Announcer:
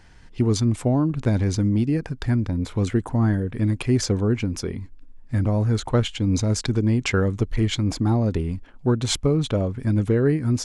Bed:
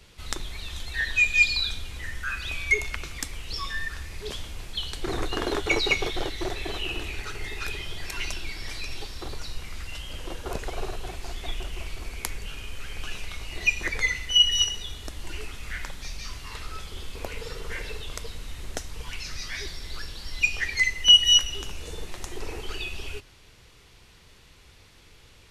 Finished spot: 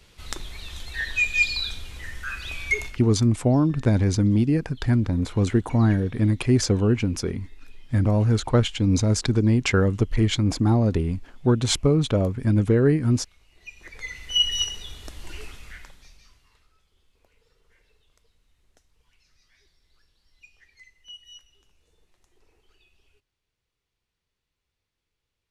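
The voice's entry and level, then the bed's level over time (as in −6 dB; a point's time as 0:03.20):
2.60 s, +1.0 dB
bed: 0:02.86 −1.5 dB
0:03.08 −23 dB
0:13.56 −23 dB
0:14.38 −2.5 dB
0:15.48 −2.5 dB
0:16.76 −29.5 dB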